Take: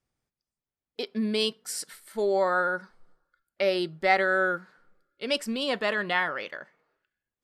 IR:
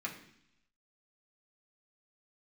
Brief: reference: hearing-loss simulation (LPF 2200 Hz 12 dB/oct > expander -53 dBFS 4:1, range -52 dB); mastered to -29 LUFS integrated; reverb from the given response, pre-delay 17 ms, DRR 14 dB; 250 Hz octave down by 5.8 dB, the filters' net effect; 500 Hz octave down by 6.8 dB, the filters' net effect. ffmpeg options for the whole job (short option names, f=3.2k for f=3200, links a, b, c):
-filter_complex "[0:a]equalizer=f=250:t=o:g=-5.5,equalizer=f=500:t=o:g=-7,asplit=2[a][b];[1:a]atrim=start_sample=2205,adelay=17[c];[b][c]afir=irnorm=-1:irlink=0,volume=-16dB[d];[a][d]amix=inputs=2:normalize=0,lowpass=2.2k,agate=range=-52dB:threshold=-53dB:ratio=4,volume=2dB"